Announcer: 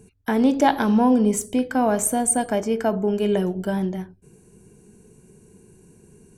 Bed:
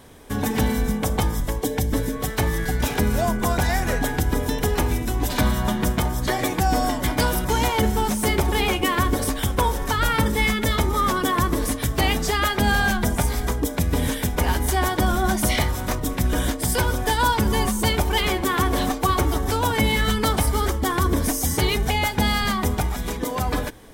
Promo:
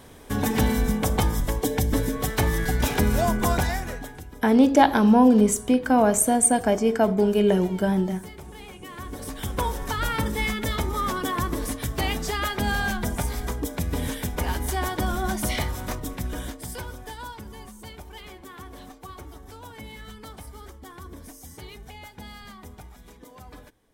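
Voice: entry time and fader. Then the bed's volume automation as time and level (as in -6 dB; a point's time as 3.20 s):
4.15 s, +1.5 dB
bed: 3.55 s -0.5 dB
4.33 s -21.5 dB
8.79 s -21.5 dB
9.56 s -5.5 dB
15.87 s -5.5 dB
17.56 s -21 dB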